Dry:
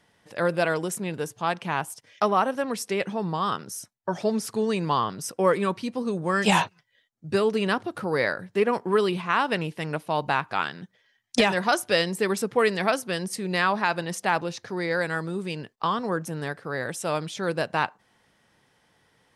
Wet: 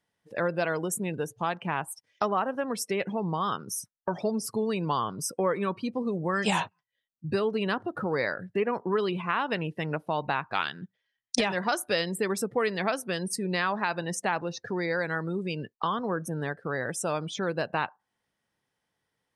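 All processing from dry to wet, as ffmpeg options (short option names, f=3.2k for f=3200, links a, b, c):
-filter_complex "[0:a]asettb=1/sr,asplit=3[a][b][c];[a]atrim=end=10.554[d];[b]atrim=start=10.55:end=11.37,asetpts=PTS-STARTPTS,afade=t=in:d=0.004:c=qsin,afade=t=out:st=0.816:d=0.004:c=qsin,highshelf=f=2.5k:g=11,adynamicsmooth=sensitivity=5.5:basefreq=4k[e];[c]atrim=start=11.366[f];[d][e]acrossfade=d=0.004:c1=hsin:c2=qsin[g];[g][f]acrossfade=d=0.004:c1=qsin:c2=hsin,afftdn=nr=22:nf=-39,highshelf=f=8.8k:g=5.5,acompressor=threshold=-37dB:ratio=2,volume=5dB"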